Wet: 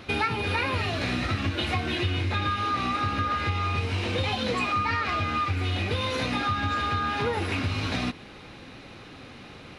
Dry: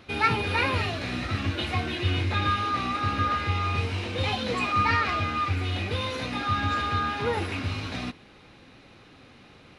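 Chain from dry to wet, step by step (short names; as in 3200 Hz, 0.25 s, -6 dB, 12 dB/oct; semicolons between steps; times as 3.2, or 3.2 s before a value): compressor, threshold -31 dBFS, peak gain reduction 13 dB; gain +7 dB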